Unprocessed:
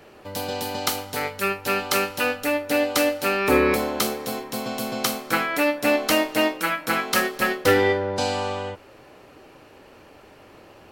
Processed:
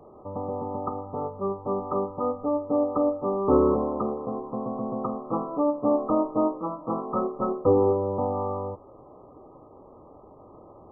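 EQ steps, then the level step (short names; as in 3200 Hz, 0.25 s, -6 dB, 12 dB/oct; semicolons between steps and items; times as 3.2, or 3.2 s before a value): dynamic EQ 720 Hz, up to -4 dB, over -36 dBFS, Q 2.4; brick-wall FIR low-pass 1300 Hz; 0.0 dB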